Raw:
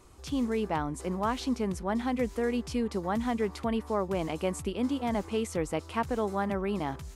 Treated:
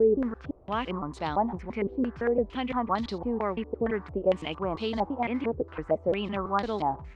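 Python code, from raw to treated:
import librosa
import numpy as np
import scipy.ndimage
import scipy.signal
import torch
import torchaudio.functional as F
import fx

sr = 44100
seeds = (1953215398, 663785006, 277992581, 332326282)

y = fx.block_reorder(x, sr, ms=170.0, group=4)
y = fx.filter_held_lowpass(y, sr, hz=4.4, low_hz=450.0, high_hz=4100.0)
y = y * 10.0 ** (-1.5 / 20.0)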